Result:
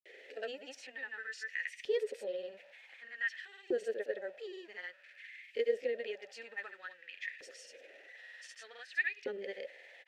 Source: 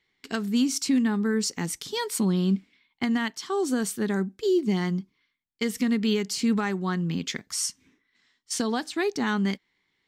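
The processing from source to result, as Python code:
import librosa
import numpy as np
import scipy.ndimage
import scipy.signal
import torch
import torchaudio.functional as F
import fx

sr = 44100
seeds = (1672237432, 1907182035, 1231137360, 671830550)

y = x + 0.5 * 10.0 ** (-37.5 / 20.0) * np.sign(x)
y = scipy.signal.sosfilt(scipy.signal.butter(2, 160.0, 'highpass', fs=sr, output='sos'), y)
y = fx.granulator(y, sr, seeds[0], grain_ms=100.0, per_s=20.0, spray_ms=100.0, spread_st=0)
y = fx.vowel_filter(y, sr, vowel='e')
y = fx.filter_lfo_highpass(y, sr, shape='saw_up', hz=0.54, low_hz=360.0, high_hz=2400.0, q=2.7)
y = y * librosa.db_to_amplitude(1.5)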